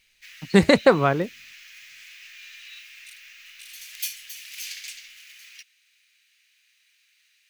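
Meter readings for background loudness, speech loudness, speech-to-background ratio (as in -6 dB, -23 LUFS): -39.0 LUFS, -19.5 LUFS, 19.5 dB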